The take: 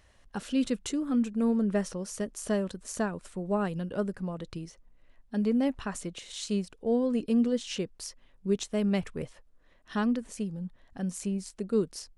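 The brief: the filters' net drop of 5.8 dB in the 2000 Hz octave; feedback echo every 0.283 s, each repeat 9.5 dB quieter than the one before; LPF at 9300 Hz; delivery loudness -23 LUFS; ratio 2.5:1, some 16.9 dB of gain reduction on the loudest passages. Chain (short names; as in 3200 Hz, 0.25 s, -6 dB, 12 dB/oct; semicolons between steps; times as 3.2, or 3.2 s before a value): LPF 9300 Hz; bell 2000 Hz -8 dB; compressor 2.5:1, threshold -49 dBFS; feedback echo 0.283 s, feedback 33%, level -9.5 dB; gain +22.5 dB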